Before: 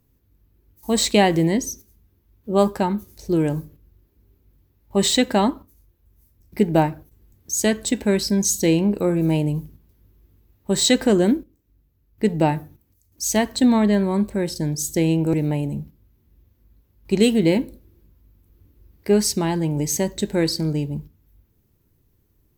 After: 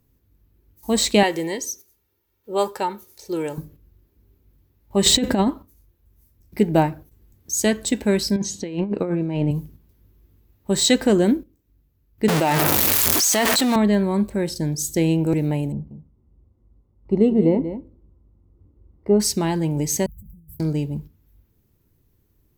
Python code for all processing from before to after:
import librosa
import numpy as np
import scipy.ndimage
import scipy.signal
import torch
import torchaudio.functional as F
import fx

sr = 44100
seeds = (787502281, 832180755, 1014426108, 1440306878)

y = fx.chain(x, sr, fx.highpass(hz=650.0, slope=6),
    fx.comb(ms=2.2, depth=0.49), at=(1.23, 3.58))
y = fx.chain(y, sr, fx.low_shelf(hz=490.0, db=9.0),
    fx.over_compress(threshold_db=-15.0, ratio=-0.5), at=(5.06, 5.48))
y = fx.chain(y, sr, fx.bandpass_edges(low_hz=110.0, high_hz=3300.0),
    fx.over_compress(threshold_db=-22.0, ratio=-0.5), at=(8.36, 9.51))
y = fx.chain(y, sr, fx.zero_step(step_db=-23.0),
    fx.highpass(hz=700.0, slope=6),
    fx.env_flatten(amount_pct=100), at=(12.28, 13.76))
y = fx.chain(y, sr, fx.savgol(points=65),
    fx.echo_single(ms=186, db=-11.0), at=(15.72, 19.2))
y = fx.chain(y, sr, fx.cheby2_bandstop(low_hz=510.0, high_hz=4600.0, order=4, stop_db=70),
    fx.over_compress(threshold_db=-42.0, ratio=-0.5), at=(20.06, 20.6))